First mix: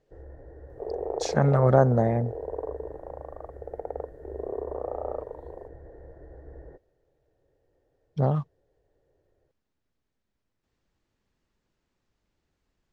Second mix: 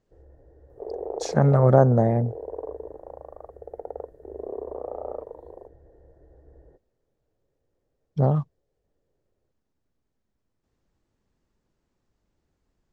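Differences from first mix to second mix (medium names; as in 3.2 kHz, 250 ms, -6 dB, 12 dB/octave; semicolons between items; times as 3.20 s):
speech +3.5 dB; first sound -7.0 dB; master: add peaking EQ 2.8 kHz -7 dB 2.4 oct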